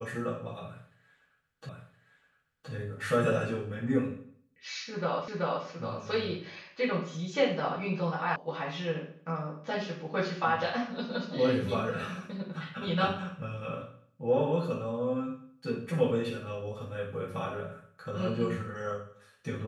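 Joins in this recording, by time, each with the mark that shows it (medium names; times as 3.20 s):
1.69 s: repeat of the last 1.02 s
5.28 s: repeat of the last 0.38 s
8.36 s: sound stops dead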